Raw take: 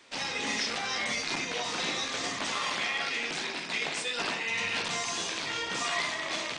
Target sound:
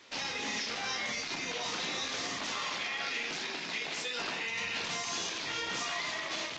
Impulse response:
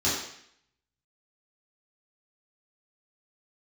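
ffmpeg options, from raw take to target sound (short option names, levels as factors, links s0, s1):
-filter_complex "[0:a]alimiter=level_in=1.33:limit=0.0631:level=0:latency=1:release=114,volume=0.75,asplit=2[s0][s1];[1:a]atrim=start_sample=2205[s2];[s1][s2]afir=irnorm=-1:irlink=0,volume=0.0299[s3];[s0][s3]amix=inputs=2:normalize=0" -ar 16000 -c:a libvorbis -b:a 48k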